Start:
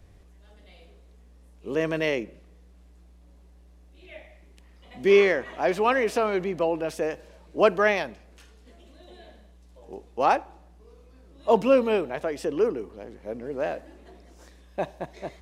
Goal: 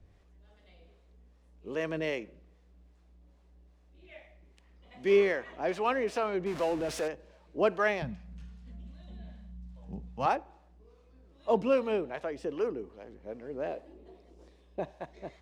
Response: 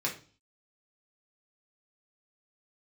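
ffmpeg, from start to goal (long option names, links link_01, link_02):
-filter_complex "[0:a]asettb=1/sr,asplit=3[link_01][link_02][link_03];[link_01]atrim=end=6.464[link_04];[link_02]atrim=start=6.46:end=7.08,asetpts=PTS-STARTPTS,afade=type=in:duration=0.004:curve=qsin,afade=type=out:start_time=0.616:duration=0.004:curve=qsin,aeval=exprs='val(0)+0.5*0.0376*sgn(val(0))':channel_layout=same[link_05];[link_03]atrim=start=7.076[link_06];[link_04][link_05]acrossfade=duration=0.004:curve1=hsin:curve2=qsin[link_07];[link_07][link_06]acrossfade=duration=0.004:curve1=qsin:curve2=hsin,asettb=1/sr,asplit=3[link_08][link_09][link_10];[link_08]atrim=end=13.674[link_11];[link_09]atrim=start=13.67:end=14.8,asetpts=PTS-STARTPTS,afade=type=in:duration=0.004:curve=qsin,afade=type=out:start_time=1.126:duration=0.004:curve=qsin,equalizer=frequency=400:width_type=o:width=0.67:gain=7,equalizer=frequency=1600:width_type=o:width=0.67:gain=-8,equalizer=frequency=6300:width_type=o:width=0.67:gain=-4[link_12];[link_10]atrim=start=14.796[link_13];[link_11][link_12]acrossfade=duration=0.004:curve1=hsin:curve2=qsin[link_14];[link_14][link_13]acrossfade=duration=0.004:curve1=qsin:curve2=hsin,acrossover=split=560[link_15][link_16];[link_15]aeval=exprs='val(0)*(1-0.5/2+0.5/2*cos(2*PI*2.5*n/s))':channel_layout=same[link_17];[link_16]aeval=exprs='val(0)*(1-0.5/2-0.5/2*cos(2*PI*2.5*n/s))':channel_layout=same[link_18];[link_17][link_18]amix=inputs=2:normalize=0,asettb=1/sr,asplit=3[link_19][link_20][link_21];[link_19]atrim=end=8.024[link_22];[link_20]atrim=start=8.02:end=10.26,asetpts=PTS-STARTPTS,afade=type=in:duration=0.004:curve=qsin,afade=type=out:start_time=2.236:duration=0.004:curve=qsin,lowshelf=frequency=250:width_type=q:width=3:gain=12.5[link_23];[link_21]atrim=start=10.256[link_24];[link_22][link_23]acrossfade=duration=0.004:curve1=hsin:curve2=qsin[link_25];[link_25][link_24]acrossfade=duration=0.004:curve1=qsin:curve2=hsin,adynamicsmooth=sensitivity=8:basefreq=7500,volume=-4.5dB"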